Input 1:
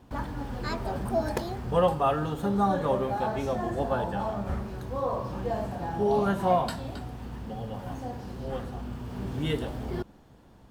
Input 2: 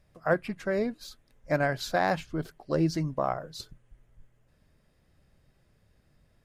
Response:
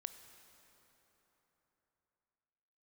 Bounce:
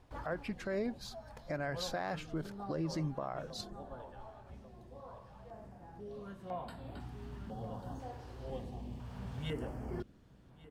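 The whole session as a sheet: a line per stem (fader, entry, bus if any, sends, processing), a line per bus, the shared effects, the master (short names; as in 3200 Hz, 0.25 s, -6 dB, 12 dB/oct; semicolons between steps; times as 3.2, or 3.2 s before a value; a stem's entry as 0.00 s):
-7.5 dB, 0.00 s, no send, echo send -21 dB, stepped notch 2 Hz 200–6000 Hz; auto duck -13 dB, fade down 0.70 s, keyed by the second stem
-2.0 dB, 0.00 s, no send, no echo send, compressor, threshold -27 dBFS, peak gain reduction 8 dB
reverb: off
echo: echo 1.143 s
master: high shelf 12000 Hz -10 dB; limiter -28 dBFS, peak gain reduction 7.5 dB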